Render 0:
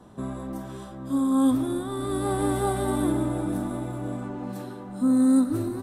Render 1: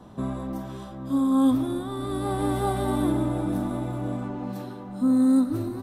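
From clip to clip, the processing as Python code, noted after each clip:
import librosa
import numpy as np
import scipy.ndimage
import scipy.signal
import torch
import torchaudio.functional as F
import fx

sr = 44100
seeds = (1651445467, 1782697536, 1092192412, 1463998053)

y = fx.graphic_eq_15(x, sr, hz=(400, 1600, 10000), db=(-3, -3, -5))
y = fx.rider(y, sr, range_db=4, speed_s=2.0)
y = fx.peak_eq(y, sr, hz=7900.0, db=-4.5, octaves=0.5)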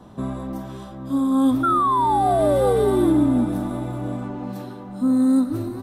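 y = fx.spec_paint(x, sr, seeds[0], shape='fall', start_s=1.63, length_s=1.82, low_hz=230.0, high_hz=1400.0, level_db=-21.0)
y = F.gain(torch.from_numpy(y), 2.0).numpy()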